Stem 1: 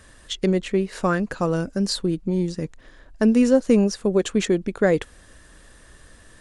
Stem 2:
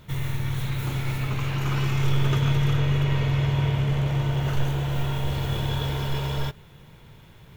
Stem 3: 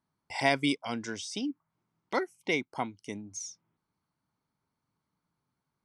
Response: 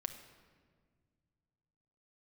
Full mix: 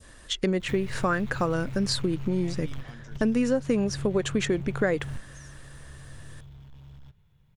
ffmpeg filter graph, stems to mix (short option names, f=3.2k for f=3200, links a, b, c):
-filter_complex "[0:a]adynamicequalizer=threshold=0.0126:dfrequency=1600:dqfactor=0.77:tfrequency=1600:tqfactor=0.77:attack=5:release=100:ratio=0.375:range=3:mode=boostabove:tftype=bell,volume=-0.5dB,asplit=2[a][b];[1:a]acrossover=split=190|6400[c][d][e];[c]acompressor=threshold=-22dB:ratio=4[f];[d]acompressor=threshold=-33dB:ratio=4[g];[e]acompressor=threshold=-54dB:ratio=4[h];[f][g][h]amix=inputs=3:normalize=0,aeval=exprs='(tanh(35.5*val(0)+0.3)-tanh(0.3))/35.5':c=same,adelay=600,volume=0dB[i];[2:a]adelay=2000,volume=-14.5dB[j];[b]apad=whole_len=359921[k];[i][k]sidechaingate=range=-21dB:threshold=-42dB:ratio=16:detection=peak[l];[l][j]amix=inputs=2:normalize=0,asubboost=boost=4:cutoff=160,acompressor=threshold=-30dB:ratio=6,volume=0dB[m];[a][m]amix=inputs=2:normalize=0,acompressor=threshold=-23dB:ratio=3"